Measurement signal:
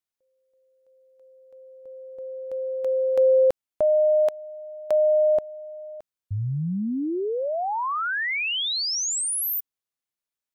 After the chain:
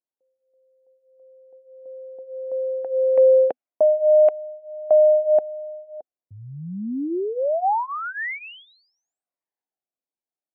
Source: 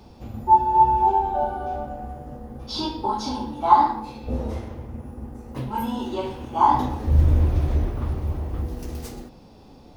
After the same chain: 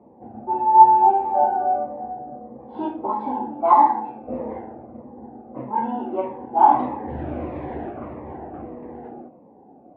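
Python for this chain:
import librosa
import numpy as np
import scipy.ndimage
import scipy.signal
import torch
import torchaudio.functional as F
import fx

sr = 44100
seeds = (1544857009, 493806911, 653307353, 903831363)

y = fx.env_lowpass(x, sr, base_hz=630.0, full_db=-14.5)
y = fx.cabinet(y, sr, low_hz=330.0, low_slope=12, high_hz=2100.0, hz=(430.0, 740.0, 1300.0), db=(-3, 6, -7))
y = fx.notch_cascade(y, sr, direction='falling', hz=1.6)
y = y * 10.0 ** (6.0 / 20.0)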